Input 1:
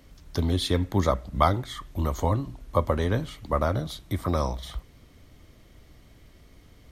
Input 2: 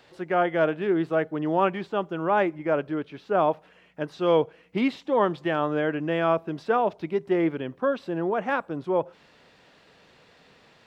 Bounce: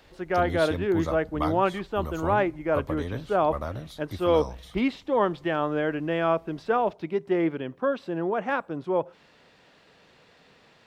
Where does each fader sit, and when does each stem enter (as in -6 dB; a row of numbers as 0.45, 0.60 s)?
-8.0, -1.0 dB; 0.00, 0.00 s